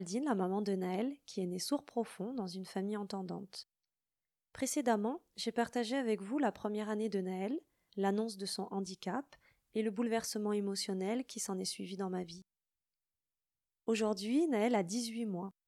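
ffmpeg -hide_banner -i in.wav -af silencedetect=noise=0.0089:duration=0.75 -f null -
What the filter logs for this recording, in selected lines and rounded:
silence_start: 3.60
silence_end: 4.55 | silence_duration: 0.95
silence_start: 12.33
silence_end: 13.88 | silence_duration: 1.55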